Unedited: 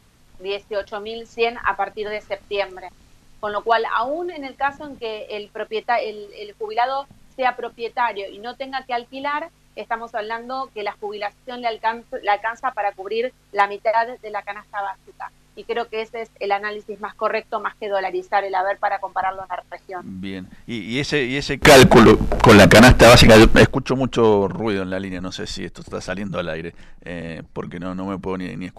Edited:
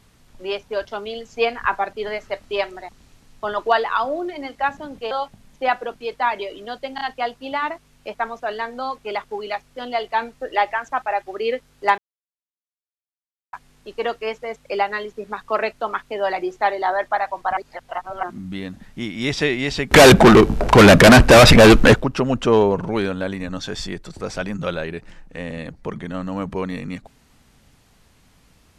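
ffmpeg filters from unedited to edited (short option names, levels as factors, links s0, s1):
-filter_complex "[0:a]asplit=8[s0][s1][s2][s3][s4][s5][s6][s7];[s0]atrim=end=5.112[s8];[s1]atrim=start=6.878:end=8.752[s9];[s2]atrim=start=8.718:end=8.752[s10];[s3]atrim=start=8.718:end=13.69,asetpts=PTS-STARTPTS,afade=t=out:st=4.968:d=0.004:c=hsin[s11];[s4]atrim=start=13.69:end=15.24,asetpts=PTS-STARTPTS,volume=0[s12];[s5]atrim=start=15.24:end=19.282,asetpts=PTS-STARTPTS,afade=t=in:d=0.004:c=hsin[s13];[s6]atrim=start=19.278:end=19.942,asetpts=PTS-STARTPTS,areverse[s14];[s7]atrim=start=19.938[s15];[s8][s9]acrossfade=d=0.004:c1=hsin:c2=hsin[s16];[s16][s10]acrossfade=d=0.004:c1=hsin:c2=hsin[s17];[s11][s12][s13]concat=n=3:v=0:a=1[s18];[s17][s18]acrossfade=d=0.004:c1=hsin:c2=hsin[s19];[s19][s14]acrossfade=d=0.004:c1=hsin:c2=hsin[s20];[s20][s15]acrossfade=d=0.004:c1=hsin:c2=hsin"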